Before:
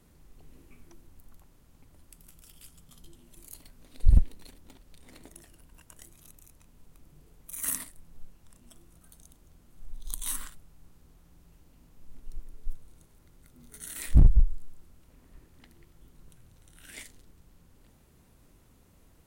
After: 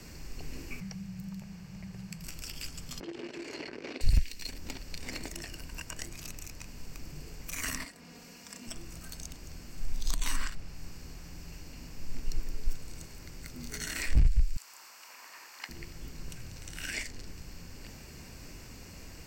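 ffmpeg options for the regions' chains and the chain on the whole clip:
ffmpeg -i in.wav -filter_complex "[0:a]asettb=1/sr,asplit=3[link_01][link_02][link_03];[link_01]atrim=end=0.804[link_04];[link_02]atrim=start=0.8:end=2.24,asetpts=PTS-STARTPTS,afade=type=in:duration=0.004:curve=qsin,afade=type=out:start_time=1.436:duration=0.004:curve=qsin,afreqshift=-200,highshelf=frequency=4000:gain=-9.5[link_05];[link_03]atrim=start=2.236[link_06];[link_04][link_05]acrossfade=duration=0.004:curve1=hsin:curve2=qsin[link_07];[link_07][link_06]acrossfade=duration=0.004:curve1=qsin:curve2=hsin,asettb=1/sr,asplit=3[link_08][link_09][link_10];[link_08]atrim=end=3.004[link_11];[link_09]atrim=start=3:end=4.01,asetpts=PTS-STARTPTS,afade=type=in:duration=0.004:curve=qsin,afade=type=out:start_time=1.006:duration=0.004:curve=qsin,aeval=exprs='val(0)+0.5*0.00562*sgn(val(0))':channel_layout=same,highpass=270,lowpass=2200,equalizer=frequency=380:width=1.5:gain=13.5[link_12];[link_10]atrim=start=4.006[link_13];[link_11][link_12]acrossfade=duration=0.004:curve1=hsin:curve2=qsin[link_14];[link_14][link_13]acrossfade=duration=0.004:curve1=qsin:curve2=hsin,asettb=1/sr,asplit=3[link_15][link_16][link_17];[link_15]atrim=end=7.854[link_18];[link_16]atrim=start=7.85:end=8.67,asetpts=PTS-STARTPTS,afade=type=in:duration=0.004:curve=qsin,afade=type=out:start_time=0.816:duration=0.004:curve=qsin,highpass=190,aecho=1:1:4.2:0.57,atrim=end_sample=36162[link_19];[link_17]atrim=start=8.666[link_20];[link_18][link_19]acrossfade=duration=0.004:curve1=hsin:curve2=qsin[link_21];[link_21][link_20]acrossfade=duration=0.004:curve1=qsin:curve2=hsin,asettb=1/sr,asplit=3[link_22][link_23][link_24];[link_22]atrim=end=14.564[link_25];[link_23]atrim=start=14.56:end=15.69,asetpts=PTS-STARTPTS,afade=type=in:duration=0.004:curve=qsin,afade=type=out:start_time=1.126:duration=0.004:curve=qsin,highpass=frequency=980:width_type=q:width=2.3,highshelf=frequency=9200:gain=4[link_26];[link_24]atrim=start=15.686[link_27];[link_25][link_26]acrossfade=duration=0.004:curve1=hsin:curve2=qsin[link_28];[link_28][link_27]acrossfade=duration=0.004:curve1=qsin:curve2=hsin,superequalizer=11b=1.78:12b=2.51:14b=3.55:15b=2:16b=0.501,acrossover=split=96|1800|5400[link_29][link_30][link_31][link_32];[link_29]acompressor=threshold=-35dB:ratio=4[link_33];[link_30]acompressor=threshold=-52dB:ratio=4[link_34];[link_31]acompressor=threshold=-54dB:ratio=4[link_35];[link_32]acompressor=threshold=-58dB:ratio=4[link_36];[link_33][link_34][link_35][link_36]amix=inputs=4:normalize=0,volume=12dB" out.wav

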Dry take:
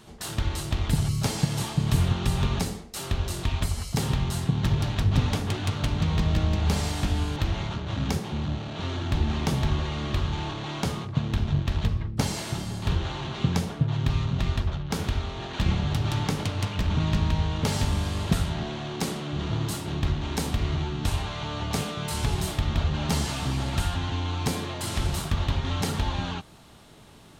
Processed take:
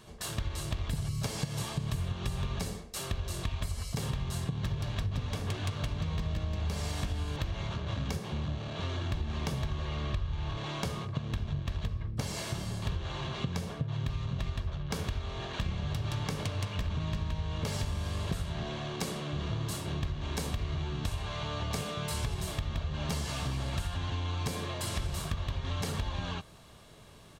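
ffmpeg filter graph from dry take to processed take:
ffmpeg -i in.wav -filter_complex "[0:a]asettb=1/sr,asplit=3[link_01][link_02][link_03];[link_01]atrim=end=9.854[link_04];[link_02]atrim=start=9.85:end=10.57,asetpts=PTS-STARTPTS,afade=type=in:duration=0.004:curve=qsin,afade=type=out:start_time=0.716:duration=0.004:curve=qsin,asubboost=boost=12:cutoff=130,adynamicsmooth=sensitivity=3.5:basefreq=7200[link_05];[link_03]atrim=start=10.566[link_06];[link_04][link_05]acrossfade=duration=0.004:curve1=hsin:curve2=qsin[link_07];[link_07][link_06]acrossfade=duration=0.004:curve1=qsin:curve2=hsin,aecho=1:1:1.8:0.34,acompressor=threshold=-26dB:ratio=6,volume=-3.5dB" out.wav

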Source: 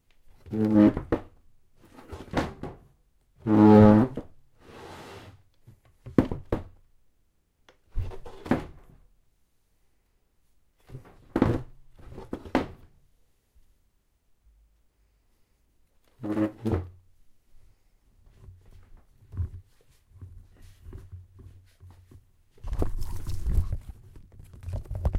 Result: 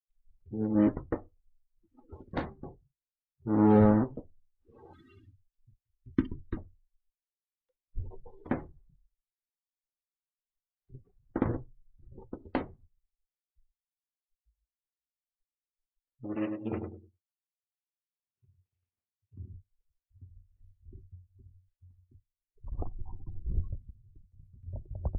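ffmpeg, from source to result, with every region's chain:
ffmpeg -i in.wav -filter_complex "[0:a]asettb=1/sr,asplit=3[link_01][link_02][link_03];[link_01]atrim=end=4.934[link_04];[link_02]atrim=start=4.93:end=6.57,asetpts=PTS-STARTPTS,afade=type=in:duration=0.004:curve=qsin,afade=type=out:start_time=1.636:duration=0.004:curve=qsin,asuperstop=centerf=650:order=4:qfactor=0.73,highshelf=frequency=3300:gain=6.5,aecho=1:1:3.2:0.34,atrim=end_sample=72324[link_05];[link_03]atrim=start=6.566[link_06];[link_04][link_05]acrossfade=duration=0.004:curve1=hsin:curve2=qsin[link_07];[link_07][link_06]acrossfade=duration=0.004:curve1=qsin:curve2=hsin,asettb=1/sr,asplit=3[link_08][link_09][link_10];[link_08]atrim=end=16.354[link_11];[link_09]atrim=start=16.35:end=19.54,asetpts=PTS-STARTPTS,afade=type=in:duration=0.004:curve=qsin,afade=type=out:start_time=3.186:duration=0.004:curve=qsin,highpass=130,equalizer=frequency=2600:width=2.2:gain=11,asplit=2[link_12][link_13];[link_13]adelay=101,lowpass=frequency=3000:poles=1,volume=-5dB,asplit=2[link_14][link_15];[link_15]adelay=101,lowpass=frequency=3000:poles=1,volume=0.34,asplit=2[link_16][link_17];[link_17]adelay=101,lowpass=frequency=3000:poles=1,volume=0.34,asplit=2[link_18][link_19];[link_19]adelay=101,lowpass=frequency=3000:poles=1,volume=0.34[link_20];[link_12][link_14][link_16][link_18][link_20]amix=inputs=5:normalize=0,atrim=end_sample=140679[link_21];[link_10]atrim=start=19.536[link_22];[link_11][link_21]acrossfade=duration=0.004:curve1=hsin:curve2=qsin[link_23];[link_23][link_22]acrossfade=duration=0.004:curve1=qsin:curve2=hsin,asettb=1/sr,asplit=3[link_24][link_25][link_26];[link_24]atrim=end=22.824[link_27];[link_25]atrim=start=22.82:end=23.47,asetpts=PTS-STARTPTS,afade=type=in:duration=0.004:curve=qsin,afade=type=out:start_time=0.646:duration=0.004:curve=qsin,aeval=exprs='if(lt(val(0),0),0.447*val(0),val(0))':channel_layout=same,lowpass=2600,equalizer=frequency=760:width=6.4:gain=14.5[link_28];[link_26]atrim=start=23.466[link_29];[link_27][link_28]acrossfade=duration=0.004:curve1=hsin:curve2=qsin[link_30];[link_30][link_29]acrossfade=duration=0.004:curve1=qsin:curve2=hsin,agate=range=-33dB:threshold=-57dB:ratio=3:detection=peak,afftdn=noise_reduction=31:noise_floor=-40,volume=-6.5dB" out.wav

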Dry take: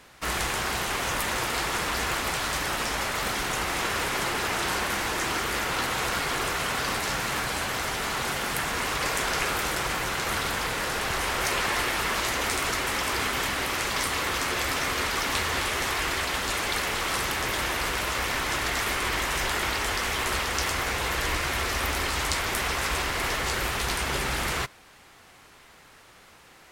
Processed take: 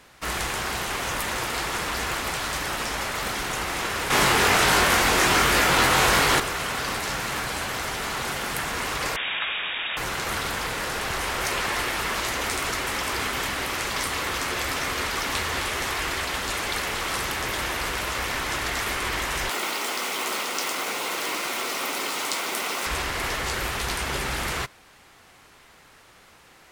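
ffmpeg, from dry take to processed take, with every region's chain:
ffmpeg -i in.wav -filter_complex "[0:a]asettb=1/sr,asplit=3[link_01][link_02][link_03];[link_01]atrim=end=4.104[link_04];[link_02]atrim=start=4.1:end=6.4,asetpts=PTS-STARTPTS,afade=type=in:duration=0.004:curve=qsin,afade=type=out:start_time=2.296:duration=0.004:curve=qsin,acontrast=85,asplit=2[link_05][link_06];[link_06]adelay=22,volume=-3.5dB[link_07];[link_05][link_07]amix=inputs=2:normalize=0,atrim=end_sample=101430[link_08];[link_03]atrim=start=6.396[link_09];[link_04][link_08]acrossfade=duration=0.004:curve1=hsin:curve2=qsin[link_10];[link_10][link_09]acrossfade=duration=0.004:curve1=qsin:curve2=hsin,asettb=1/sr,asplit=3[link_11][link_12][link_13];[link_11]atrim=end=9.164[link_14];[link_12]atrim=start=9.16:end=9.97,asetpts=PTS-STARTPTS,afade=type=in:duration=0.004:curve=qsin,afade=type=out:start_time=0.806:duration=0.004:curve=qsin,equalizer=frequency=72:width_type=o:width=0.98:gain=-8,lowpass=frequency=3200:width_type=q:width=0.5098,lowpass=frequency=3200:width_type=q:width=0.6013,lowpass=frequency=3200:width_type=q:width=0.9,lowpass=frequency=3200:width_type=q:width=2.563,afreqshift=-3800[link_15];[link_13]atrim=start=9.966[link_16];[link_14][link_15]acrossfade=duration=0.004:curve1=hsin:curve2=qsin[link_17];[link_17][link_16]acrossfade=duration=0.004:curve1=qsin:curve2=hsin,asettb=1/sr,asplit=3[link_18][link_19][link_20];[link_18]atrim=end=19.504[link_21];[link_19]atrim=start=19.5:end=22.86,asetpts=PTS-STARTPTS,afade=type=in:duration=0.004:curve=qsin,afade=type=out:start_time=3.356:duration=0.004:curve=qsin,bandreject=frequency=1700:width=5.9,acrusher=bits=4:mix=0:aa=0.5,highpass=frequency=210:width=0.5412,highpass=frequency=210:width=1.3066[link_22];[link_20]atrim=start=22.856[link_23];[link_21][link_22]acrossfade=duration=0.004:curve1=hsin:curve2=qsin[link_24];[link_24][link_23]acrossfade=duration=0.004:curve1=qsin:curve2=hsin" out.wav

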